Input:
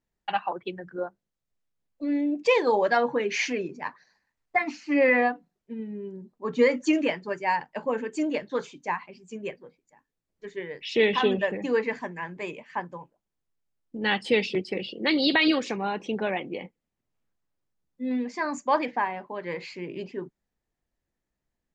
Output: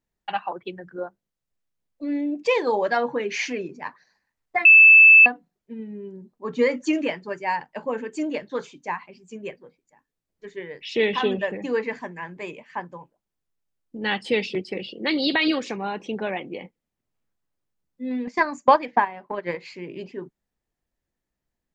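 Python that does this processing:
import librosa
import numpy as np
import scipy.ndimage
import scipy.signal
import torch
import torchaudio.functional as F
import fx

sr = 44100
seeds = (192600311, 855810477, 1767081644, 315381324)

y = fx.transient(x, sr, attack_db=12, sustain_db=-6, at=(18.27, 19.66))
y = fx.edit(y, sr, fx.bleep(start_s=4.65, length_s=0.61, hz=2630.0, db=-7.0), tone=tone)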